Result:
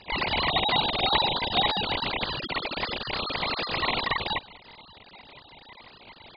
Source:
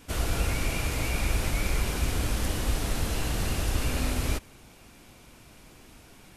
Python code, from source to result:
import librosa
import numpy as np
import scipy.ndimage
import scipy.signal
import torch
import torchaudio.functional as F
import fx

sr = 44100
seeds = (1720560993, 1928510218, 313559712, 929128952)

y = fx.sine_speech(x, sr)
y = y * np.sin(2.0 * np.pi * 1500.0 * np.arange(len(y)) / sr)
y = F.gain(torch.from_numpy(y), 2.0).numpy()